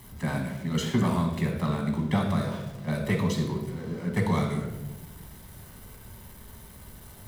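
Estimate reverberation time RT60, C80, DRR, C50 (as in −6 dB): 1.1 s, 7.5 dB, 1.5 dB, 5.0 dB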